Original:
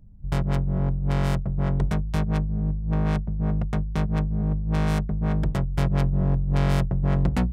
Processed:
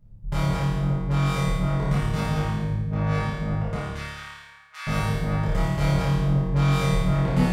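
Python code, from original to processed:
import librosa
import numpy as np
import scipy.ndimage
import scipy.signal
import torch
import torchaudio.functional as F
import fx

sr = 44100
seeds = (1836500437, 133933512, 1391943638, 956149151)

p1 = fx.cheby2_highpass(x, sr, hz=220.0, order=4, stop_db=80, at=(3.76, 4.87))
p2 = p1 + fx.room_flutter(p1, sr, wall_m=4.8, rt60_s=1.0, dry=0)
p3 = fx.rev_gated(p2, sr, seeds[0], gate_ms=300, shape='falling', drr_db=-7.5)
y = p3 * librosa.db_to_amplitude(-7.5)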